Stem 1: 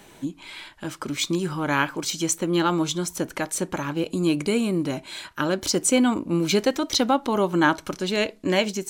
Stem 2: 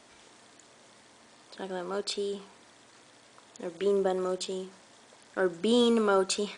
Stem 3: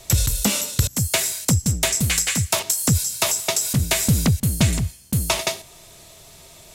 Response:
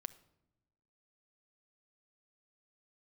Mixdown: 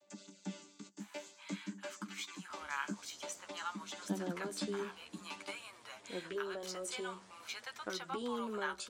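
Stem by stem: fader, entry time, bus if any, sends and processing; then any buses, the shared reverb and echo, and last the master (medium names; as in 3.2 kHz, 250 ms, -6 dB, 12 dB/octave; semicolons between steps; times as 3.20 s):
-7.5 dB, 1.00 s, no send, inverse Chebyshev high-pass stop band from 170 Hz, stop band 80 dB; treble shelf 2.1 kHz -9.5 dB; three bands compressed up and down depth 40%
-2.5 dB, 2.50 s, no send, peaking EQ 63 Hz +13 dB 0.51 oct; compression 12:1, threshold -33 dBFS, peak gain reduction 14 dB
-18.5 dB, 0.00 s, no send, vocoder on a held chord bare fifth, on G3; bass shelf 130 Hz -9.5 dB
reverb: none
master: flange 0.52 Hz, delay 8.1 ms, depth 7 ms, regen +20%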